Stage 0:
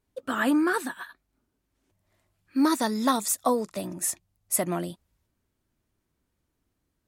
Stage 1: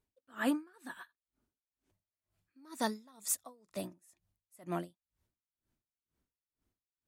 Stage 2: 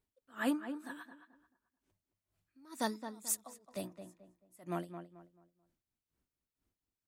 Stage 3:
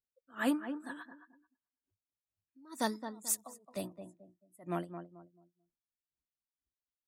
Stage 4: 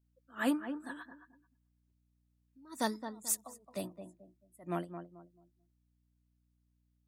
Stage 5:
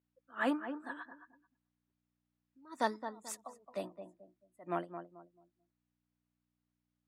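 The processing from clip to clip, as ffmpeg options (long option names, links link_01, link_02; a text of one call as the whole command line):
ffmpeg -i in.wav -af "aeval=exprs='val(0)*pow(10,-33*(0.5-0.5*cos(2*PI*2.1*n/s))/20)':channel_layout=same,volume=-5.5dB" out.wav
ffmpeg -i in.wav -filter_complex "[0:a]asplit=2[link_01][link_02];[link_02]adelay=218,lowpass=frequency=1900:poles=1,volume=-9dB,asplit=2[link_03][link_04];[link_04]adelay=218,lowpass=frequency=1900:poles=1,volume=0.32,asplit=2[link_05][link_06];[link_06]adelay=218,lowpass=frequency=1900:poles=1,volume=0.32,asplit=2[link_07][link_08];[link_08]adelay=218,lowpass=frequency=1900:poles=1,volume=0.32[link_09];[link_01][link_03][link_05][link_07][link_09]amix=inputs=5:normalize=0,volume=-1.5dB" out.wav
ffmpeg -i in.wav -af "afftdn=noise_reduction=19:noise_floor=-63,volume=2dB" out.wav
ffmpeg -i in.wav -af "aeval=exprs='val(0)+0.0002*(sin(2*PI*60*n/s)+sin(2*PI*2*60*n/s)/2+sin(2*PI*3*60*n/s)/3+sin(2*PI*4*60*n/s)/4+sin(2*PI*5*60*n/s)/5)':channel_layout=same" out.wav
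ffmpeg -i in.wav -af "bandpass=frequency=960:width_type=q:width=0.55:csg=0,volume=3dB" out.wav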